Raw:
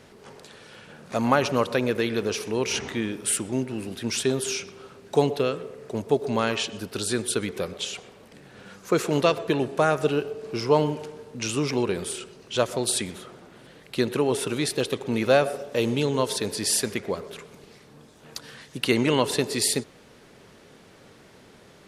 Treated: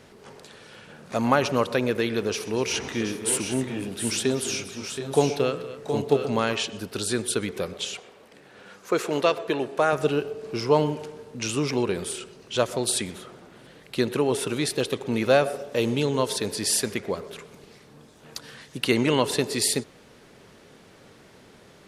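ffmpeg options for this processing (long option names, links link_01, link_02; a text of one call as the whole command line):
ffmpeg -i in.wav -filter_complex "[0:a]asettb=1/sr,asplit=3[link_01][link_02][link_03];[link_01]atrim=end=2.284[link_04];[link_02]atrim=start=2.28:end=6.55,asetpts=PTS-STARTPTS,afade=type=in:duration=0.004:curve=qsin,afade=type=out:start_time=4.266:duration=0.004:curve=qsin,aecho=1:1:131|243|723|752:0.106|0.178|0.355|0.282,atrim=end_sample=188307[link_05];[link_03]atrim=start=6.546[link_06];[link_04][link_05]acrossfade=duration=0.004:curve1=hsin:curve2=qsin[link_07];[link_07][link_06]acrossfade=duration=0.004:curve1=qsin:curve2=hsin,asettb=1/sr,asplit=3[link_08][link_09][link_10];[link_08]atrim=end=7.974[link_11];[link_09]atrim=start=7.97:end=9.93,asetpts=PTS-STARTPTS,afade=type=in:duration=0.004:curve=qsin,afade=type=out:start_time=1.956:duration=0.004:curve=qsin,bass=frequency=250:gain=-10,treble=frequency=4000:gain=-3[link_12];[link_10]atrim=start=9.926[link_13];[link_11][link_12]acrossfade=duration=0.004:curve1=hsin:curve2=qsin[link_14];[link_14][link_13]acrossfade=duration=0.004:curve1=qsin:curve2=hsin" out.wav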